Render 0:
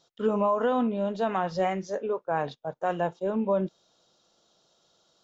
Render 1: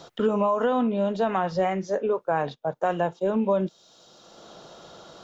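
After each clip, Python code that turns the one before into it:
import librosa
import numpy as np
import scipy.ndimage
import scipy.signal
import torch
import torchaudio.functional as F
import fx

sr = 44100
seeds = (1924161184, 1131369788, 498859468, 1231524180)

y = fx.band_squash(x, sr, depth_pct=70)
y = y * librosa.db_to_amplitude(2.5)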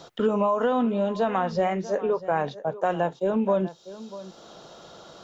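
y = x + 10.0 ** (-16.0 / 20.0) * np.pad(x, (int(642 * sr / 1000.0), 0))[:len(x)]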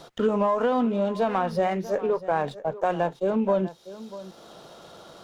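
y = fx.running_max(x, sr, window=3)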